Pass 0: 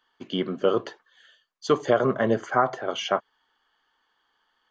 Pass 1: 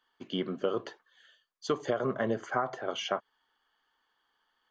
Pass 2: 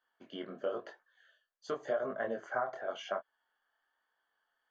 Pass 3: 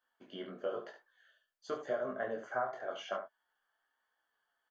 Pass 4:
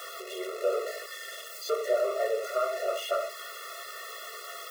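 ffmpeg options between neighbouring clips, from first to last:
-af "acompressor=threshold=0.1:ratio=5,volume=0.562"
-af "equalizer=f=100:t=o:w=0.67:g=-4,equalizer=f=630:t=o:w=0.67:g=12,equalizer=f=1600:t=o:w=0.67:g=9,flanger=delay=19.5:depth=5.9:speed=0.95,volume=0.355"
-af "aecho=1:1:16|70:0.473|0.355,volume=0.75"
-af "aeval=exprs='val(0)+0.5*0.0133*sgn(val(0))':c=same,afftfilt=real='re*eq(mod(floor(b*sr/1024/360),2),1)':imag='im*eq(mod(floor(b*sr/1024/360),2),1)':win_size=1024:overlap=0.75,volume=2.37"

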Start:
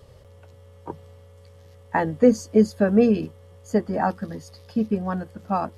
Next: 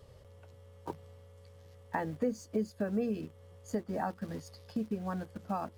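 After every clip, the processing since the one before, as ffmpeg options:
-filter_complex "[0:a]asplit=2[s0][s1];[s1]acrusher=bits=5:mix=0:aa=0.000001,volume=0.299[s2];[s0][s2]amix=inputs=2:normalize=0,acompressor=threshold=0.0398:ratio=2.5,volume=0.473"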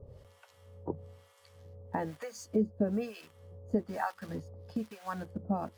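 -filter_complex "[0:a]acrossover=split=740[s0][s1];[s0]aeval=exprs='val(0)*(1-1/2+1/2*cos(2*PI*1.1*n/s))':c=same[s2];[s1]aeval=exprs='val(0)*(1-1/2-1/2*cos(2*PI*1.1*n/s))':c=same[s3];[s2][s3]amix=inputs=2:normalize=0,volume=2.11"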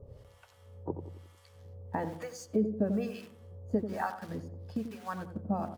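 -filter_complex "[0:a]asplit=2[s0][s1];[s1]adelay=89,lowpass=f=990:p=1,volume=0.398,asplit=2[s2][s3];[s3]adelay=89,lowpass=f=990:p=1,volume=0.47,asplit=2[s4][s5];[s5]adelay=89,lowpass=f=990:p=1,volume=0.47,asplit=2[s6][s7];[s7]adelay=89,lowpass=f=990:p=1,volume=0.47,asplit=2[s8][s9];[s9]adelay=89,lowpass=f=990:p=1,volume=0.47[s10];[s0][s2][s4][s6][s8][s10]amix=inputs=6:normalize=0"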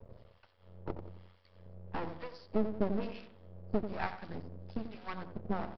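-af "agate=range=0.0224:threshold=0.00178:ratio=3:detection=peak,aresample=11025,aeval=exprs='max(val(0),0)':c=same,aresample=44100,volume=1.12"

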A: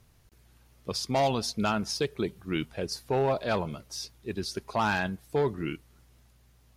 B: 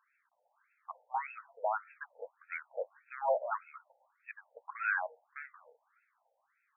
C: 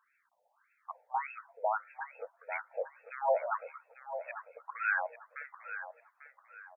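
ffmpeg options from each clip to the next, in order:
-af "bass=f=250:g=3,treble=f=4000:g=12,afftfilt=real='re*between(b*sr/1024,630*pow(1900/630,0.5+0.5*sin(2*PI*1.7*pts/sr))/1.41,630*pow(1900/630,0.5+0.5*sin(2*PI*1.7*pts/sr))*1.41)':imag='im*between(b*sr/1024,630*pow(1900/630,0.5+0.5*sin(2*PI*1.7*pts/sr))/1.41,630*pow(1900/630,0.5+0.5*sin(2*PI*1.7*pts/sr))*1.41)':win_size=1024:overlap=0.75"
-af "aecho=1:1:845|1690|2535:0.282|0.0874|0.0271,volume=1.19"

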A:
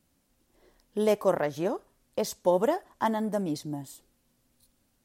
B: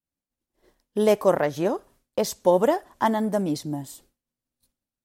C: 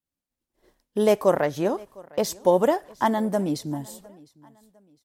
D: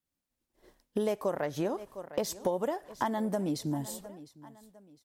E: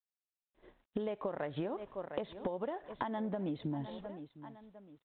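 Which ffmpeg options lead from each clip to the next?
-af "agate=range=0.0224:threshold=0.00178:ratio=3:detection=peak,volume=1.78"
-af "aecho=1:1:706|1412:0.0631|0.0221"
-af "acompressor=threshold=0.0355:ratio=6,volume=1.12"
-af "acompressor=threshold=0.02:ratio=12,volume=1.12" -ar 8000 -c:a adpcm_g726 -b:a 40k

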